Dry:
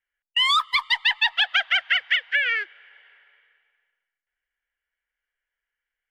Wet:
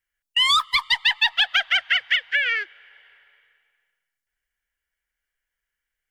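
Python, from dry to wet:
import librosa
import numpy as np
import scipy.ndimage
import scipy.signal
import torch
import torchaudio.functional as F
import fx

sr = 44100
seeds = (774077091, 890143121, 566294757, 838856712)

y = fx.bass_treble(x, sr, bass_db=8, treble_db=7)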